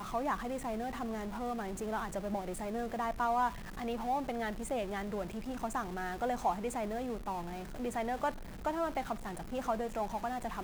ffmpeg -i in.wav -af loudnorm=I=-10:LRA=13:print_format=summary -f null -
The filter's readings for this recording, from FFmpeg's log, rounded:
Input Integrated:    -36.8 LUFS
Input True Peak:     -20.6 dBTP
Input LRA:             1.5 LU
Input Threshold:     -46.8 LUFS